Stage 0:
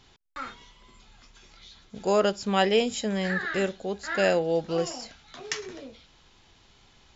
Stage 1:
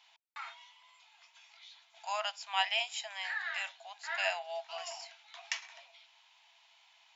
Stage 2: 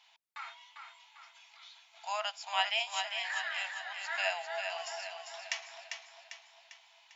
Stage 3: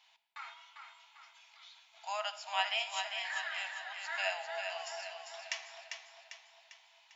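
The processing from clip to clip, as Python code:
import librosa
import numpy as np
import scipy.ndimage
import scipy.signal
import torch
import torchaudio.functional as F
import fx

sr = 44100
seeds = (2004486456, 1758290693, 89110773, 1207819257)

y1 = scipy.signal.sosfilt(scipy.signal.cheby1(6, 9, 650.0, 'highpass', fs=sr, output='sos'), x)
y2 = fx.echo_feedback(y1, sr, ms=398, feedback_pct=48, wet_db=-6.0)
y3 = fx.room_shoebox(y2, sr, seeds[0], volume_m3=1500.0, walls='mixed', distance_m=0.55)
y3 = F.gain(torch.from_numpy(y3), -2.5).numpy()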